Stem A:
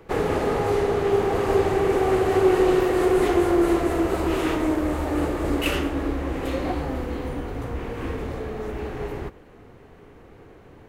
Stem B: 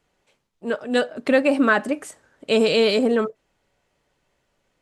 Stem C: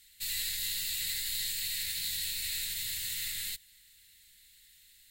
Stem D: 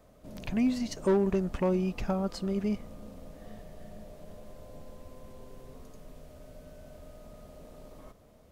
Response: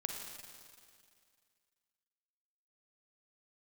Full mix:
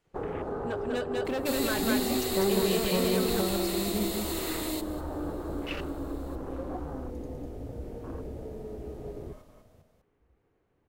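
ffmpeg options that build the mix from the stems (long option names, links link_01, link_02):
-filter_complex "[0:a]afwtdn=0.0282,adelay=50,volume=-8.5dB[link_01];[1:a]volume=17dB,asoftclip=hard,volume=-17dB,volume=-6.5dB,asplit=2[link_02][link_03];[link_03]volume=-6.5dB[link_04];[2:a]adelay=1250,volume=-1.5dB,asplit=2[link_05][link_06];[link_06]volume=-16dB[link_07];[3:a]adelay=1300,volume=-3dB,asplit=2[link_08][link_09];[link_09]volume=-4.5dB[link_10];[link_01][link_02]amix=inputs=2:normalize=0,acompressor=threshold=-32dB:ratio=2,volume=0dB[link_11];[link_04][link_07][link_10]amix=inputs=3:normalize=0,aecho=0:1:199:1[link_12];[link_05][link_08][link_11][link_12]amix=inputs=4:normalize=0"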